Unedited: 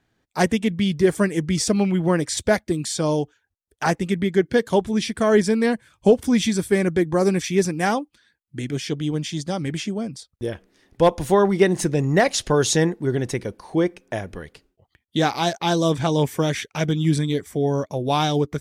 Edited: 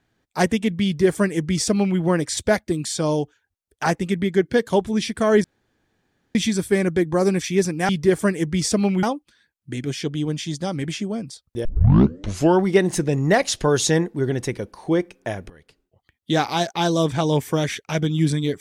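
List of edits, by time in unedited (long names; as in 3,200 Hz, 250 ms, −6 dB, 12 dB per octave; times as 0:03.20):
0:00.85–0:01.99: duplicate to 0:07.89
0:05.44–0:06.35: fill with room tone
0:10.51: tape start 0.99 s
0:14.36–0:15.25: fade in equal-power, from −17 dB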